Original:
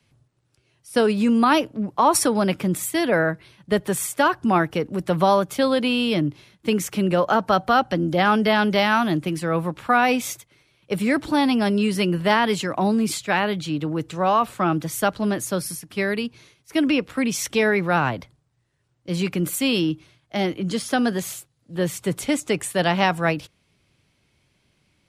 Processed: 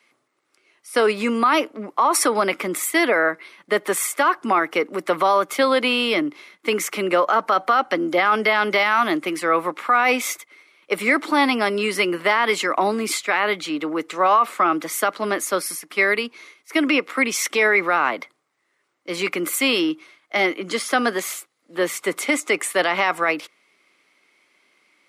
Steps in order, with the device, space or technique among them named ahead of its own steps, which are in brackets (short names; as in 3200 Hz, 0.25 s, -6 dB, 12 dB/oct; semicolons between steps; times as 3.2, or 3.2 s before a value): laptop speaker (HPF 290 Hz 24 dB/oct; bell 1200 Hz +9 dB 0.42 oct; bell 2100 Hz +11 dB 0.27 oct; limiter -11.5 dBFS, peak gain reduction 10 dB); gain +3 dB